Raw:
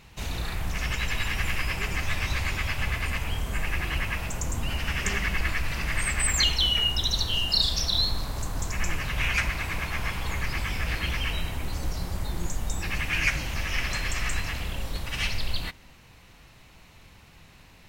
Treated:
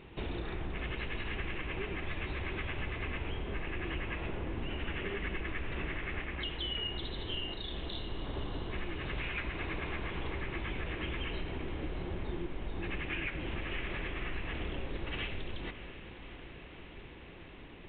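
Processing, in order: peaking EQ 360 Hz +14.5 dB 0.97 oct; compression, threshold -31 dBFS, peak gain reduction 12.5 dB; echo that smears into a reverb 637 ms, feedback 74%, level -13 dB; trim -3 dB; µ-law 64 kbps 8 kHz

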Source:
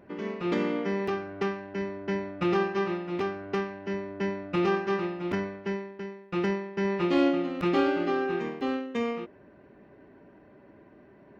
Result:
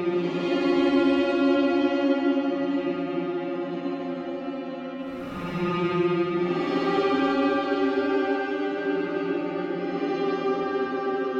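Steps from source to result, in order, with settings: repeats whose band climbs or falls 130 ms, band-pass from 510 Hz, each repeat 0.7 oct, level -11 dB; Paulstretch 10×, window 0.10 s, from 7.07 s

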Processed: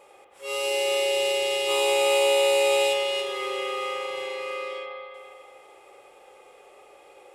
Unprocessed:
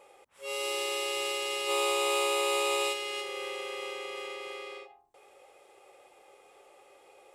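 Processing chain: spring tank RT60 2.4 s, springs 36/44 ms, chirp 75 ms, DRR 0.5 dB; trim +3.5 dB

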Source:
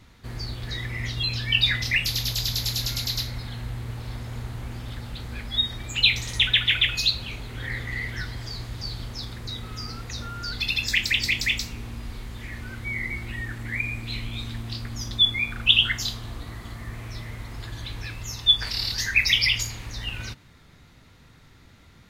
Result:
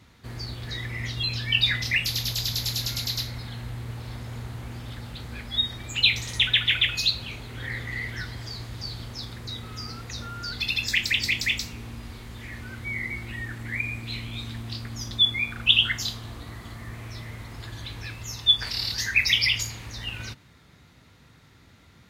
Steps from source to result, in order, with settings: high-pass 62 Hz; trim -1 dB

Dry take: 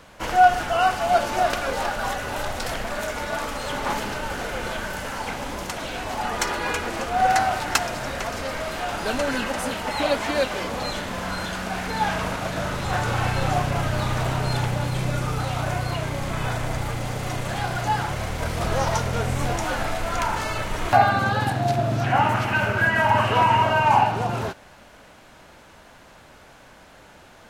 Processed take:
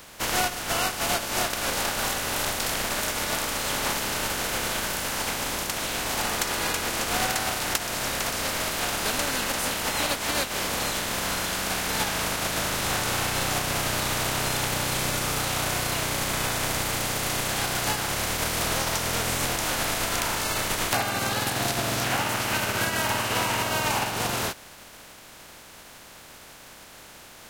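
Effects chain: spectral contrast reduction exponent 0.42; compression 6:1, threshold -25 dBFS, peak gain reduction 15 dB; trim +2 dB

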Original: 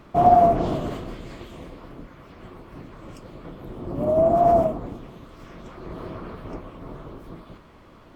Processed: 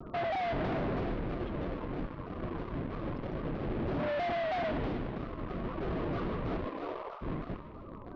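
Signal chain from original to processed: 6.64–7.21 s: high-pass 200 Hz -> 710 Hz 24 dB/octave; loudest bins only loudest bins 32; in parallel at -8.5 dB: fuzz box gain 42 dB, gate -42 dBFS; on the sum: compression, threshold -28 dBFS, peak gain reduction 17.5 dB; saturation -35.5 dBFS, distortion -10 dB; Bessel low-pass 2.6 kHz, order 6; on a send: feedback echo behind a high-pass 152 ms, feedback 55%, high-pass 1.7 kHz, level -7 dB; on the sum: vibrato with a chosen wave saw down 3.1 Hz, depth 160 cents; trim +4.5 dB

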